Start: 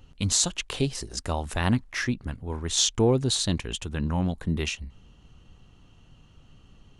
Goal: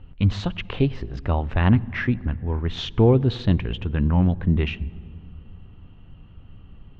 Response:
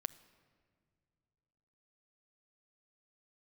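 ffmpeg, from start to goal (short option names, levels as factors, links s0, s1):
-filter_complex "[0:a]lowpass=f=2900:w=0.5412,lowpass=f=2900:w=1.3066,asplit=2[s0][s1];[1:a]atrim=start_sample=2205,asetrate=29106,aresample=44100,lowshelf=f=300:g=11.5[s2];[s1][s2]afir=irnorm=-1:irlink=0,volume=0.75[s3];[s0][s3]amix=inputs=2:normalize=0,volume=0.75"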